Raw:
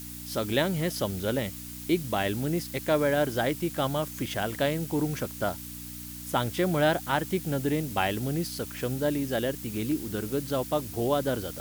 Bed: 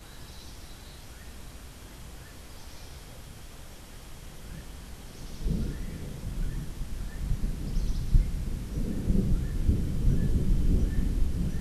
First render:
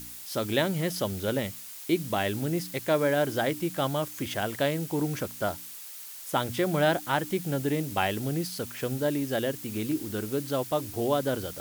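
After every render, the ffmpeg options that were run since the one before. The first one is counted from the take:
-af "bandreject=f=60:t=h:w=4,bandreject=f=120:t=h:w=4,bandreject=f=180:t=h:w=4,bandreject=f=240:t=h:w=4,bandreject=f=300:t=h:w=4"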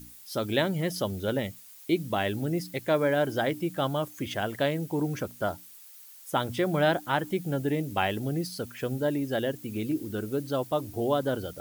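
-af "afftdn=nr=10:nf=-43"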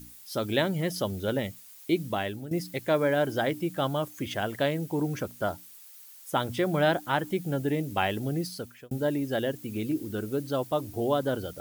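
-filter_complex "[0:a]asplit=3[a][b][c];[a]atrim=end=2.51,asetpts=PTS-STARTPTS,afade=t=out:st=2.06:d=0.45:silence=0.251189[d];[b]atrim=start=2.51:end=8.91,asetpts=PTS-STARTPTS,afade=t=in:d=0.004:c=hsin:silence=0.251189,afade=t=out:st=5.98:d=0.42[e];[c]atrim=start=8.91,asetpts=PTS-STARTPTS,afade=t=in:d=0.004:c=hsin[f];[d][e][f]concat=n=3:v=0:a=1"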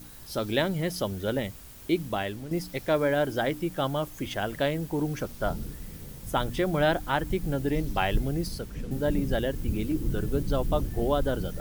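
-filter_complex "[1:a]volume=-5dB[a];[0:a][a]amix=inputs=2:normalize=0"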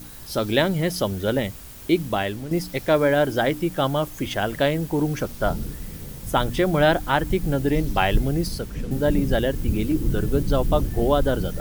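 -af "volume=6dB"

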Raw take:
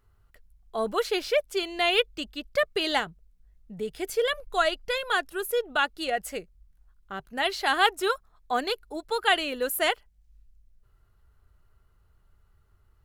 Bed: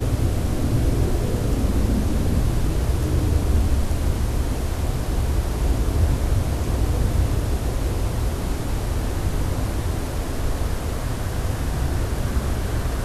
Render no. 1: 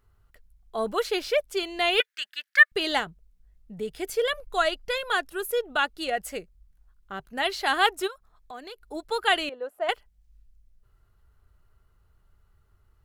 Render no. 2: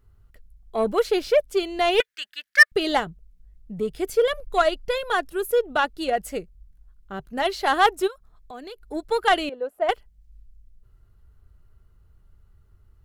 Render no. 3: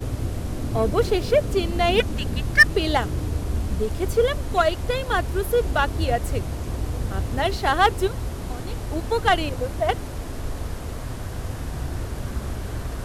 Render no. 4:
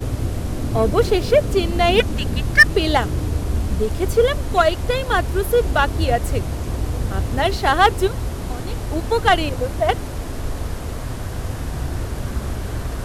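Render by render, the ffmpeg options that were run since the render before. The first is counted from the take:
-filter_complex "[0:a]asettb=1/sr,asplit=3[a][b][c];[a]atrim=end=2.004[d];[b]atrim=start=2:end=2.72,asetpts=PTS-STARTPTS,afade=t=in:d=0.004:c=qsin,afade=t=out:st=0.716:d=0.004:c=qsin,highpass=f=1.7k:t=q:w=6.5[e];[c]atrim=start=2.716[f];[d][e]acrossfade=d=0.004:c1=hsin:c2=qsin[g];[g][f]acrossfade=d=0.004:c1=qsin:c2=hsin,asplit=3[h][i][j];[h]afade=t=out:st=8.06:d=0.02[k];[i]acompressor=threshold=-42dB:ratio=3:attack=3.2:release=140:knee=1:detection=peak,afade=t=in:st=8.06:d=0.02,afade=t=out:st=8.82:d=0.02[l];[j]afade=t=in:st=8.82:d=0.02[m];[k][l][m]amix=inputs=3:normalize=0,asettb=1/sr,asplit=3[n][o][p];[n]atrim=end=9.494[q];[o]atrim=start=9.49:end=9.89,asetpts=PTS-STARTPTS,afade=t=in:d=0.004:c=qsin,afade=t=out:st=0.396:d=0.004:c=qsin,bandpass=f=700:t=q:w=2.2[r];[p]atrim=start=9.886[s];[q][r]acrossfade=d=0.004:c1=hsin:c2=qsin[t];[t][s]acrossfade=d=0.004:c1=qsin:c2=hsin"
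-filter_complex "[0:a]asplit=2[a][b];[b]adynamicsmooth=sensitivity=0.5:basefreq=560,volume=3dB[c];[a][c]amix=inputs=2:normalize=0,asoftclip=type=tanh:threshold=-5.5dB"
-filter_complex "[1:a]volume=-6dB[a];[0:a][a]amix=inputs=2:normalize=0"
-af "volume=4dB,alimiter=limit=-2dB:level=0:latency=1"

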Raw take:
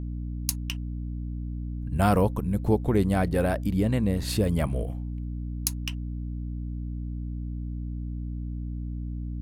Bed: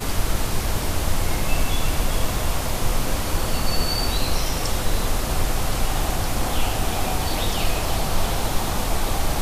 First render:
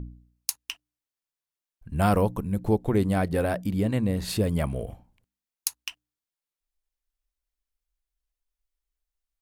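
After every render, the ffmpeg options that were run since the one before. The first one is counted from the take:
-af "bandreject=f=60:t=h:w=4,bandreject=f=120:t=h:w=4,bandreject=f=180:t=h:w=4,bandreject=f=240:t=h:w=4,bandreject=f=300:t=h:w=4"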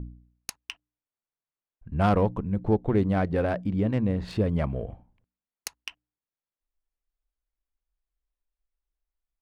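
-af "adynamicsmooth=sensitivity=1.5:basefreq=2.2k"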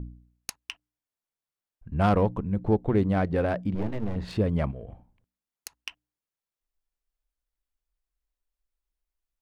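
-filter_complex "[0:a]asplit=3[a][b][c];[a]afade=t=out:st=3.74:d=0.02[d];[b]aeval=exprs='max(val(0),0)':c=same,afade=t=in:st=3.74:d=0.02,afade=t=out:st=4.15:d=0.02[e];[c]afade=t=in:st=4.15:d=0.02[f];[d][e][f]amix=inputs=3:normalize=0,asettb=1/sr,asplit=3[g][h][i];[g]atrim=end=4.714[j];[h]atrim=start=4.71:end=5.78,asetpts=PTS-STARTPTS,afade=t=in:d=0.004:c=qsin,afade=t=out:st=1.066:d=0.004:c=qsin,acompressor=threshold=-36dB:ratio=5:attack=3.2:release=140:knee=1:detection=peak[k];[i]atrim=start=5.776[l];[j][k]acrossfade=d=0.004:c1=hsin:c2=qsin[m];[m][l]acrossfade=d=0.004:c1=qsin:c2=hsin"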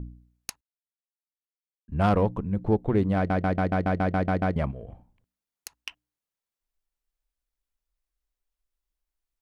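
-filter_complex "[0:a]asplit=13[a][b][c][d][e][f][g][h][i][j][k][l][m];[a]atrim=end=0.61,asetpts=PTS-STARTPTS,afade=t=out:st=0.606:d=0.004:c=hsin[n];[b]atrim=start=0.61:end=1.88,asetpts=PTS-STARTPTS,volume=0[o];[c]atrim=start=1.88:end=3.302,asetpts=PTS-STARTPTS,afade=t=in:d=0.004:c=hsin[p];[d]atrim=start=3.158:end=3.302[q];[e]atrim=start=3.158:end=3.302[r];[f]atrim=start=3.158:end=3.302[s];[g]atrim=start=3.158:end=3.302[t];[h]atrim=start=3.158:end=3.302[u];[i]atrim=start=3.158:end=3.302[v];[j]atrim=start=3.158:end=3.302[w];[k]atrim=start=3.158:end=3.302[x];[l]atrim=start=3.158:end=3.302[y];[m]atrim=start=4.558[z];[n][o][p]concat=n=3:v=0:a=1[aa];[aa][q]acrossfade=d=0.004:c1=hsin:c2=hsin[ab];[ab][r]acrossfade=d=0.004:c1=hsin:c2=hsin[ac];[ac][s]acrossfade=d=0.004:c1=hsin:c2=hsin[ad];[ad][t]acrossfade=d=0.004:c1=hsin:c2=hsin[ae];[ae][u]acrossfade=d=0.004:c1=hsin:c2=hsin[af];[af][v]acrossfade=d=0.004:c1=hsin:c2=hsin[ag];[ag][w]acrossfade=d=0.004:c1=hsin:c2=hsin[ah];[ah][x]acrossfade=d=0.004:c1=hsin:c2=hsin[ai];[ai][y]acrossfade=d=0.004:c1=hsin:c2=hsin[aj];[aj][z]acrossfade=d=0.004:c1=hsin:c2=hsin"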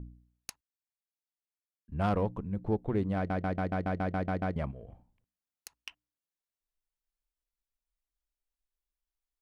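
-af "volume=-7dB"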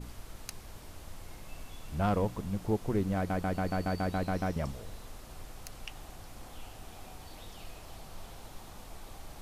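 -filter_complex "[1:a]volume=-24.5dB[a];[0:a][a]amix=inputs=2:normalize=0"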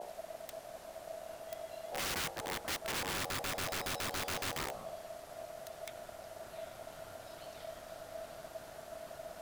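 -af "aeval=exprs='val(0)*sin(2*PI*650*n/s)':c=same,aeval=exprs='(mod(35.5*val(0)+1,2)-1)/35.5':c=same"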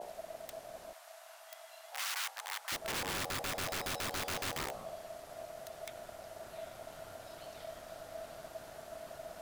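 -filter_complex "[0:a]asettb=1/sr,asplit=3[a][b][c];[a]atrim=end=0.934[d];[b]atrim=start=0.93:end=2.72,asetpts=PTS-STARTPTS,afade=t=in:d=0.004:c=qsin,afade=t=out:st=1.786:d=0.004:c=qsin,highpass=f=860:w=0.5412,highpass=f=860:w=1.3066[e];[c]atrim=start=2.716[f];[d][e]acrossfade=d=0.004:c1=hsin:c2=qsin[g];[g][f]acrossfade=d=0.004:c1=qsin:c2=hsin"

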